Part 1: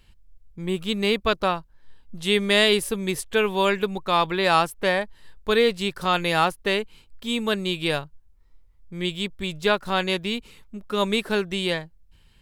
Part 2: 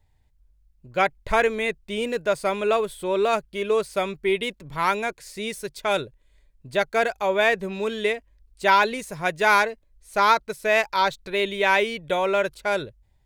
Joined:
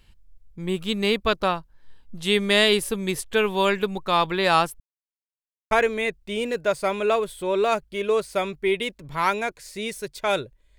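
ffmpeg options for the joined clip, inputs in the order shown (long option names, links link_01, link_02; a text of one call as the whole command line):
ffmpeg -i cue0.wav -i cue1.wav -filter_complex "[0:a]apad=whole_dur=10.78,atrim=end=10.78,asplit=2[link_01][link_02];[link_01]atrim=end=4.8,asetpts=PTS-STARTPTS,afade=type=out:start_time=4.796:duration=0.004:curve=hsin[link_03];[link_02]atrim=start=4.8:end=5.71,asetpts=PTS-STARTPTS,volume=0[link_04];[1:a]atrim=start=1.32:end=6.39,asetpts=PTS-STARTPTS,afade=type=in:duration=0.004:curve=hsin[link_05];[link_03][link_04][link_05]concat=n=3:v=0:a=1" out.wav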